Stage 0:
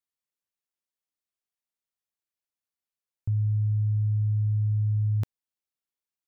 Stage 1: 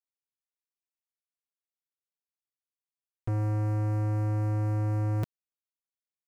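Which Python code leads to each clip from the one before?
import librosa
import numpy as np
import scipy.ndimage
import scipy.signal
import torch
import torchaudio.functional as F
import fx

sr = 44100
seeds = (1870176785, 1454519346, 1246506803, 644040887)

y = x + 0.73 * np.pad(x, (int(6.2 * sr / 1000.0), 0))[:len(x)]
y = fx.leveller(y, sr, passes=5)
y = F.gain(torch.from_numpy(y), -5.0).numpy()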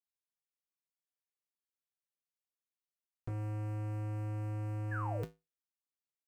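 y = fx.spec_paint(x, sr, seeds[0], shape='fall', start_s=4.91, length_s=0.34, low_hz=380.0, high_hz=1800.0, level_db=-34.0)
y = fx.comb_fb(y, sr, f0_hz=54.0, decay_s=0.22, harmonics='odd', damping=0.0, mix_pct=80)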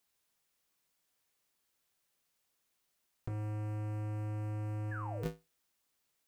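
y = fx.over_compress(x, sr, threshold_db=-45.0, ratio=-1.0)
y = F.gain(torch.from_numpy(y), 7.5).numpy()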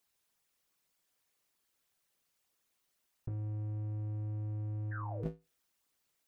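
y = fx.envelope_sharpen(x, sr, power=1.5)
y = fx.doppler_dist(y, sr, depth_ms=0.29)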